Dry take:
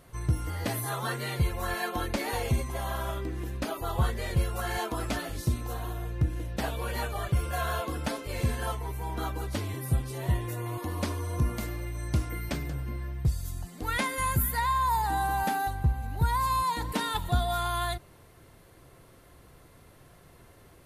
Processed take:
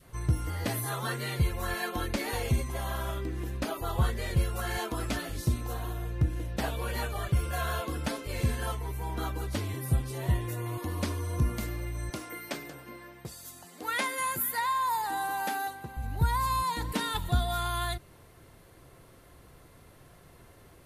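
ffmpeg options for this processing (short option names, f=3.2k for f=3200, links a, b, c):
-filter_complex "[0:a]asettb=1/sr,asplit=3[a][b][c];[a]atrim=end=12.104[d];[b]atrim=start=12.1:end=15.97,asetpts=PTS-STARTPTS,afade=t=in:d=0.004:c=qsin,afade=t=out:st=3.866:d=0.004:c=qsin,highpass=330[e];[c]atrim=start=15.966[f];[d][e]acrossfade=d=0.004:c1=hsin:c2=qsin[g];[g][f]acrossfade=d=0.004:c1=qsin:c2=hsin,adynamicequalizer=threshold=0.00631:dfrequency=790:dqfactor=1.2:tfrequency=790:tqfactor=1.2:attack=5:release=100:ratio=0.375:range=2:mode=cutabove:tftype=bell"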